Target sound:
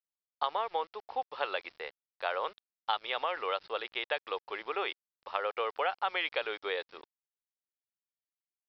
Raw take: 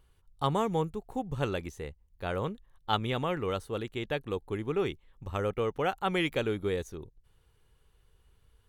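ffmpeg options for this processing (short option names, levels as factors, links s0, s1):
-af "highpass=f=600:w=0.5412,highpass=f=600:w=1.3066,acompressor=threshold=0.02:ratio=6,aresample=11025,aeval=exprs='val(0)*gte(abs(val(0)),0.00133)':c=same,aresample=44100,volume=2.11"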